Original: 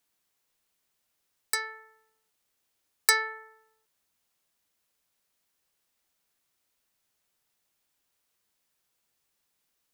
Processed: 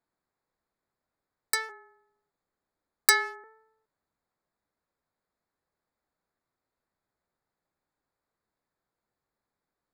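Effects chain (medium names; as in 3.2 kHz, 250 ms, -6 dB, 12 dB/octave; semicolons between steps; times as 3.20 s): local Wiener filter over 15 samples; 1.69–3.44 s: frequency shift -30 Hz; trim +1.5 dB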